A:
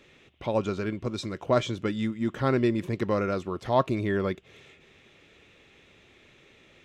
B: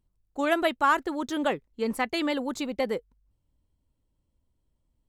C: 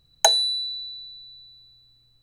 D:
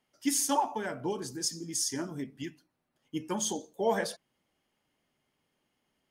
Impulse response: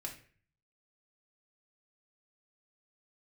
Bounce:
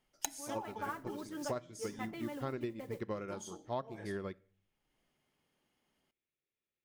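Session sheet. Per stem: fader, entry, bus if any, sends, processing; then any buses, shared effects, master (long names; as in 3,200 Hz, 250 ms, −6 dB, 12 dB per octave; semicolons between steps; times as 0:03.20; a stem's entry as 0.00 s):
−1.5 dB, 0.00 s, send −13.5 dB, expander for the loud parts 2.5 to 1, over −45 dBFS
−18.5 dB, 0.00 s, send −9.5 dB, low-pass filter 2,200 Hz 12 dB per octave; comb filter 6.9 ms, depth 81%; noise that follows the level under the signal 20 dB
+2.5 dB, 0.00 s, send −8 dB, power curve on the samples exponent 3
−2.5 dB, 0.00 s, send −16 dB, automatic ducking −22 dB, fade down 1.70 s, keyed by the first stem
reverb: on, RT60 0.45 s, pre-delay 3 ms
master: downward compressor 20 to 1, threshold −34 dBFS, peak gain reduction 21.5 dB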